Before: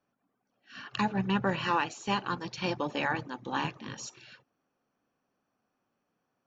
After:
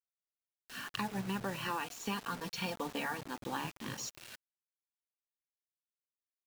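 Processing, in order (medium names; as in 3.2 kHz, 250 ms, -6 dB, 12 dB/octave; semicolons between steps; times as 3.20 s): 1.80–3.21 s: comb 4.3 ms, depth 59%; compression 3:1, threshold -38 dBFS, peak gain reduction 11.5 dB; bit crusher 8-bit; trim +1 dB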